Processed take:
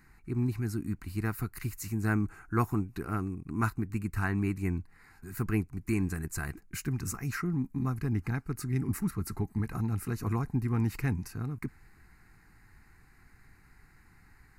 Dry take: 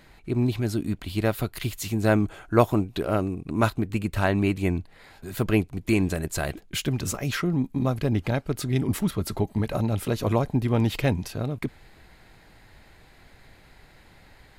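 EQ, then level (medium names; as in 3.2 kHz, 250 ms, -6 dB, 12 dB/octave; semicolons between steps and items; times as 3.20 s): band-stop 950 Hz, Q 18; static phaser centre 1.4 kHz, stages 4; -4.5 dB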